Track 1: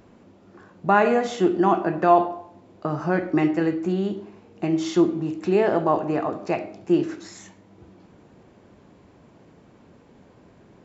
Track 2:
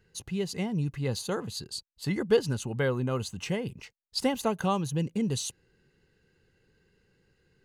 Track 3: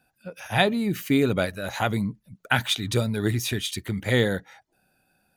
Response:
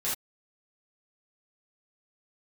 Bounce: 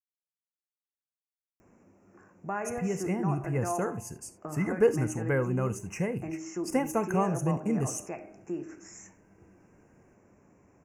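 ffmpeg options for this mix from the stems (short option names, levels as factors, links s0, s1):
-filter_complex "[0:a]adelay=1600,volume=0.355[s0];[1:a]adelay=2500,volume=0.891,asplit=2[s1][s2];[s2]volume=0.126[s3];[s0]highshelf=f=5000:g=10.5,acompressor=threshold=0.00708:ratio=1.5,volume=1[s4];[3:a]atrim=start_sample=2205[s5];[s3][s5]afir=irnorm=-1:irlink=0[s6];[s1][s4][s6]amix=inputs=3:normalize=0,asuperstop=centerf=3800:order=8:qfactor=1.3"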